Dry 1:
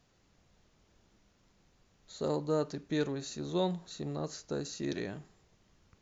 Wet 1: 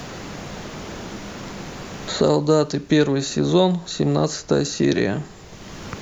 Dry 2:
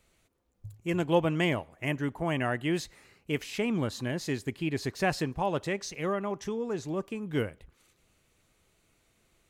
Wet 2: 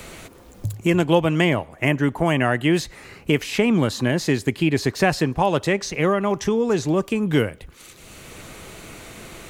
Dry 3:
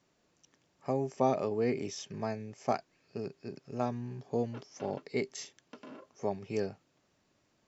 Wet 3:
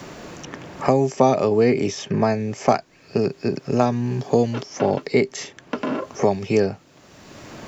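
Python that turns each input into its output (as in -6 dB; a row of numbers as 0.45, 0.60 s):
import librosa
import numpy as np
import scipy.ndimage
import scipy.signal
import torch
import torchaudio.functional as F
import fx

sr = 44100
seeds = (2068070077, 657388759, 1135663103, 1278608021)

y = fx.band_squash(x, sr, depth_pct=70)
y = y * 10.0 ** (-22 / 20.0) / np.sqrt(np.mean(np.square(y)))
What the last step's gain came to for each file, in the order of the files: +17.0, +10.0, +15.0 dB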